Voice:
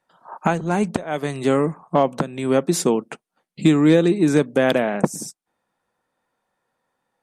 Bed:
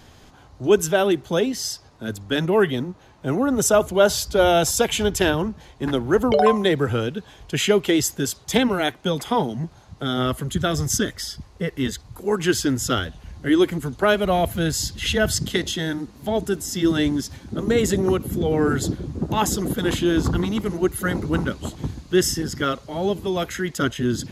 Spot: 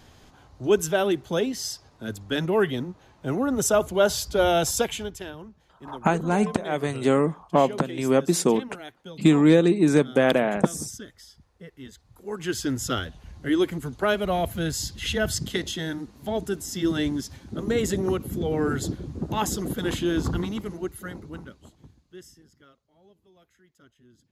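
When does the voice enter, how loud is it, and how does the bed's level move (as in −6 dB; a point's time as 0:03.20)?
5.60 s, −2.0 dB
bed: 0:04.80 −4 dB
0:05.25 −18.5 dB
0:11.89 −18.5 dB
0:12.71 −5 dB
0:20.39 −5 dB
0:22.84 −35 dB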